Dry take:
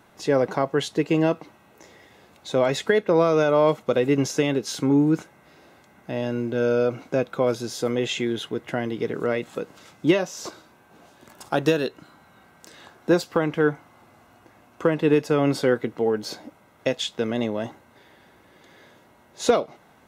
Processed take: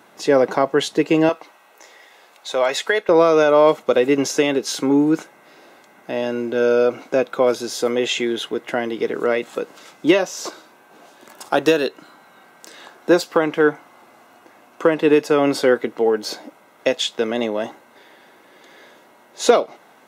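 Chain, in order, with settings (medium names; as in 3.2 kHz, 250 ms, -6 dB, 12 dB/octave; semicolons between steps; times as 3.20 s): high-pass 230 Hz 12 dB/octave, from 1.29 s 620 Hz, from 3.09 s 290 Hz; trim +6 dB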